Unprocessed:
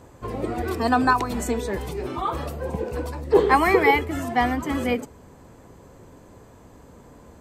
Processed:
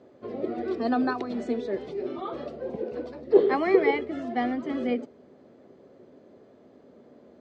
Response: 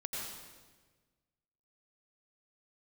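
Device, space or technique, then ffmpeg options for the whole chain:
kitchen radio: -af "highpass=190,equalizer=frequency=240:width_type=q:width=4:gain=7,equalizer=frequency=380:width_type=q:width=4:gain=8,equalizer=frequency=600:width_type=q:width=4:gain=8,equalizer=frequency=970:width_type=q:width=4:gain=-10,equalizer=frequency=1600:width_type=q:width=4:gain=-3,equalizer=frequency=2600:width_type=q:width=4:gain=-4,lowpass=frequency=4600:width=0.5412,lowpass=frequency=4600:width=1.3066,volume=-7.5dB"

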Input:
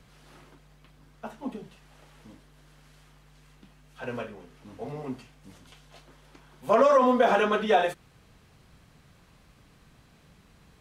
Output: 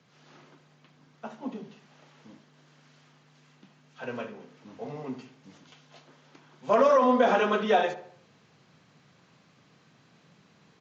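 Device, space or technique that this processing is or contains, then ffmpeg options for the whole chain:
Bluetooth headset: -filter_complex "[0:a]highpass=frequency=130:width=0.5412,highpass=frequency=130:width=1.3066,asplit=2[link_01][link_02];[link_02]adelay=72,lowpass=frequency=2200:poles=1,volume=-12dB,asplit=2[link_03][link_04];[link_04]adelay=72,lowpass=frequency=2200:poles=1,volume=0.48,asplit=2[link_05][link_06];[link_06]adelay=72,lowpass=frequency=2200:poles=1,volume=0.48,asplit=2[link_07][link_08];[link_08]adelay=72,lowpass=frequency=2200:poles=1,volume=0.48,asplit=2[link_09][link_10];[link_10]adelay=72,lowpass=frequency=2200:poles=1,volume=0.48[link_11];[link_01][link_03][link_05][link_07][link_09][link_11]amix=inputs=6:normalize=0,dynaudnorm=framelen=100:gausssize=3:maxgain=4dB,aresample=16000,aresample=44100,volume=-5dB" -ar 16000 -c:a sbc -b:a 64k

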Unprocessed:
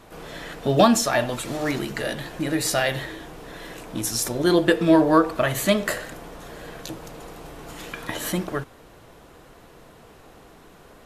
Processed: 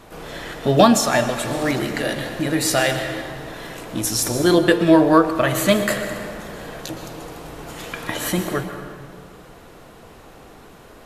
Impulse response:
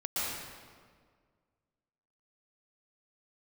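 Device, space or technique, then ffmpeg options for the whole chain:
compressed reverb return: -filter_complex "[0:a]asplit=2[link_01][link_02];[1:a]atrim=start_sample=2205[link_03];[link_02][link_03]afir=irnorm=-1:irlink=0,acompressor=threshold=-14dB:ratio=6,volume=-10.5dB[link_04];[link_01][link_04]amix=inputs=2:normalize=0,volume=2dB"

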